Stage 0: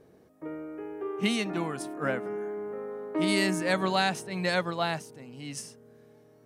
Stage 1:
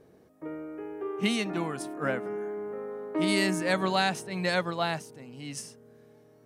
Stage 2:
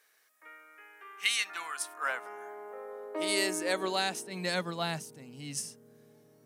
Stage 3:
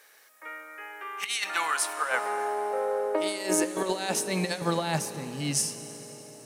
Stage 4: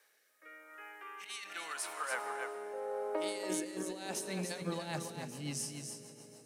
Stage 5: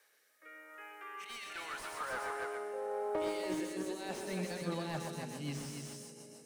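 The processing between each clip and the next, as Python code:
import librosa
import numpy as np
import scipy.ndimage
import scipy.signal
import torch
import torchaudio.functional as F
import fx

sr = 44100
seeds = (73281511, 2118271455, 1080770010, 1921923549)

y1 = x
y2 = fx.rider(y1, sr, range_db=4, speed_s=2.0)
y2 = fx.filter_sweep_highpass(y2, sr, from_hz=1700.0, to_hz=150.0, start_s=1.27, end_s=5.08, q=1.8)
y2 = fx.high_shelf(y2, sr, hz=4000.0, db=11.5)
y2 = y2 * 10.0 ** (-5.5 / 20.0)
y3 = fx.small_body(y2, sr, hz=(550.0, 840.0), ring_ms=45, db=7)
y3 = fx.over_compress(y3, sr, threshold_db=-34.0, ratio=-0.5)
y3 = fx.rev_plate(y3, sr, seeds[0], rt60_s=4.1, hf_ratio=1.0, predelay_ms=0, drr_db=11.0)
y3 = y3 * 10.0 ** (7.0 / 20.0)
y4 = fx.rotary_switch(y3, sr, hz=0.85, then_hz=7.0, switch_at_s=4.02)
y4 = y4 + 10.0 ** (-6.5 / 20.0) * np.pad(y4, (int(284 * sr / 1000.0), 0))[:len(y4)]
y4 = fx.end_taper(y4, sr, db_per_s=110.0)
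y4 = y4 * 10.0 ** (-8.5 / 20.0)
y5 = y4 + 10.0 ** (-7.0 / 20.0) * np.pad(y4, (int(125 * sr / 1000.0), 0))[:len(y4)]
y5 = fx.slew_limit(y5, sr, full_power_hz=24.0)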